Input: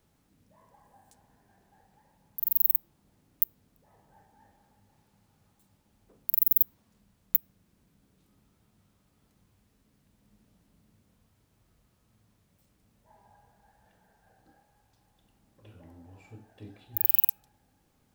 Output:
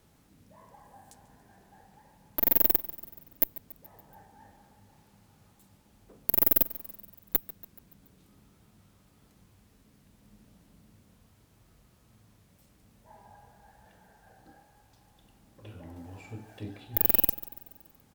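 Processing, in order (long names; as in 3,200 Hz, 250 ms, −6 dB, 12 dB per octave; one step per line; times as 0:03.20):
sine wavefolder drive 8 dB, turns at −3 dBFS
harmonic generator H 6 −17 dB, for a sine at −1.5 dBFS
on a send: repeating echo 142 ms, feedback 56%, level −18 dB
0:15.96–0:16.78: on the sum: one half of a high-frequency compander encoder only
level −5.5 dB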